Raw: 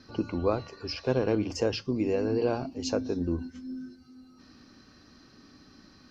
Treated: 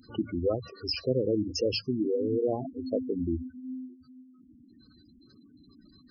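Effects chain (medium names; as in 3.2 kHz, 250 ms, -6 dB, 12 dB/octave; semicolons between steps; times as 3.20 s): spectral gate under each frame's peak -10 dB strong; treble shelf 2.5 kHz +8 dB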